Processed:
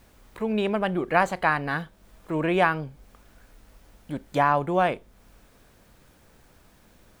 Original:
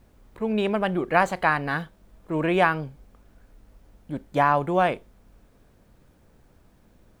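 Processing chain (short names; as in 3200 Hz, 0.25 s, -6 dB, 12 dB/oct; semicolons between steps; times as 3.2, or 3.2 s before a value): mismatched tape noise reduction encoder only; gain -1 dB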